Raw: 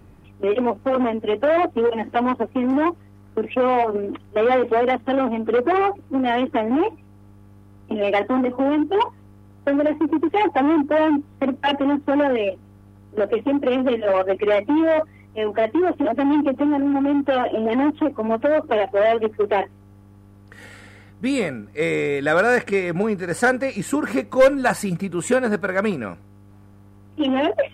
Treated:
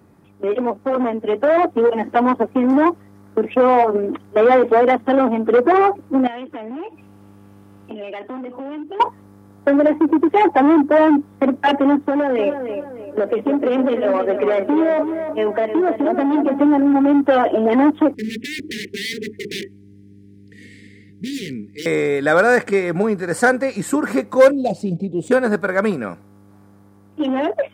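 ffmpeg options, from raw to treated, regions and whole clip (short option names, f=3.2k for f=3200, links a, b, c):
-filter_complex "[0:a]asettb=1/sr,asplit=3[a][b][c];[a]atrim=end=6.274[d];[b]atrim=start=6.27:end=9,asetpts=PTS-STARTPTS,afade=t=in:d=0.004:c=qsin,afade=t=out:st=2.726:d=0.004:c=qsin,equalizer=f=2.8k:w=3:g=9.5,acompressor=threshold=-38dB:ratio=3:attack=3.2:release=140:knee=1:detection=peak[e];[c]atrim=start=8.996[f];[d][e]acrossfade=d=0.004:c1=hsin:c2=qsin[g];[g][f]acrossfade=d=0.004:c1=qsin:c2=hsin,asettb=1/sr,asplit=3[h][i][j];[h]atrim=end=12.084[k];[i]atrim=start=12.08:end=16.59,asetpts=PTS-STARTPTS,afade=t=in:d=0.004:c=qsin,afade=t=out:st=4.506:d=0.004:c=qsin,acompressor=threshold=-19dB:ratio=6:attack=3.2:release=140:knee=1:detection=peak,asplit=2[l][m];[m]adelay=304,lowpass=f=2.5k:p=1,volume=-7.5dB,asplit=2[n][o];[o]adelay=304,lowpass=f=2.5k:p=1,volume=0.4,asplit=2[p][q];[q]adelay=304,lowpass=f=2.5k:p=1,volume=0.4,asplit=2[r][s];[s]adelay=304,lowpass=f=2.5k:p=1,volume=0.4,asplit=2[t][u];[u]adelay=304,lowpass=f=2.5k:p=1,volume=0.4[v];[l][n][p][r][t][v]amix=inputs=6:normalize=0,atrim=end_sample=198891[w];[j]atrim=start=16.586[x];[k][w]acrossfade=d=0.004:c1=hsin:c2=qsin[y];[y][x]acrossfade=d=0.004:c1=qsin:c2=hsin,asettb=1/sr,asplit=3[z][aa][ab];[z]atrim=end=18.144[ac];[aa]atrim=start=18.14:end=21.86,asetpts=PTS-STARTPTS,afade=t=in:d=0.004:c=qsin,afade=t=out:st=3.716:d=0.004:c=qsin,aemphasis=mode=reproduction:type=50fm,aeval=exprs='0.0794*(abs(mod(val(0)/0.0794+3,4)-2)-1)':c=same,asuperstop=centerf=910:order=12:qfactor=0.59[ad];[ab]atrim=start=21.856[ae];[ac][ad]acrossfade=d=0.004:c1=hsin:c2=qsin[af];[af][ae]acrossfade=d=0.004:c1=qsin:c2=hsin,asettb=1/sr,asplit=3[ag][ah][ai];[ag]atrim=end=24.514[aj];[ah]atrim=start=24.51:end=25.31,asetpts=PTS-STARTPTS,afade=t=in:d=0.004:c=qsin,afade=t=out:st=0.796:d=0.004:c=qsin,asuperstop=centerf=1400:order=8:qfactor=0.65,adynamicsmooth=sensitivity=2:basefreq=2.7k[ak];[ai]atrim=start=25.306[al];[aj][ak]acrossfade=d=0.004:c1=hsin:c2=qsin[am];[am][al]acrossfade=d=0.004:c1=qsin:c2=hsin,highpass=140,equalizer=f=2.8k:t=o:w=0.6:g=-7,dynaudnorm=f=330:g=9:m=6dB"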